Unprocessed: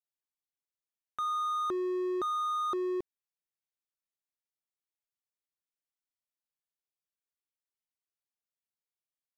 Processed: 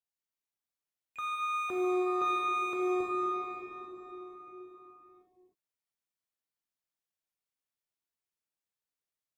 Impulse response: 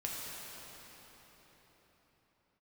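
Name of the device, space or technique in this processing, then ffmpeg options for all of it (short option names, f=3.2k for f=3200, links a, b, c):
shimmer-style reverb: -filter_complex "[0:a]asettb=1/sr,asplit=3[a][b][c];[a]atrim=end=1.944[d];[b]atrim=start=1.94:end=2.87,asetpts=PTS-STARTPTS,afade=t=in:d=0.004:c=qsin,afade=t=out:st=0.926:d=0.004:c=qsin,lowpass=8.8k[e];[c]atrim=start=2.866[f];[d][e]acrossfade=d=0.004:c1=hsin:c2=qsin[g];[g][f]acrossfade=d=0.004:c1=qsin:c2=hsin,asplit=2[h][i];[i]asetrate=88200,aresample=44100,atempo=0.5,volume=-12dB[j];[h][j]amix=inputs=2:normalize=0[k];[1:a]atrim=start_sample=2205[l];[k][l]afir=irnorm=-1:irlink=0,volume=-2dB"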